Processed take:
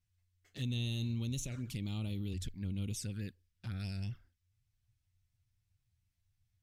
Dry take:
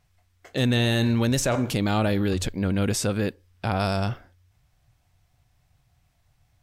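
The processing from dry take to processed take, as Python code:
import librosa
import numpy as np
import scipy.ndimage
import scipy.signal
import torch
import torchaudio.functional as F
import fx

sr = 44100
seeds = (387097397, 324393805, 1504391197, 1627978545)

y = fx.tone_stack(x, sr, knobs='6-0-2')
y = fx.env_flanger(y, sr, rest_ms=10.7, full_db=-36.5)
y = y * 10.0 ** (2.5 / 20.0)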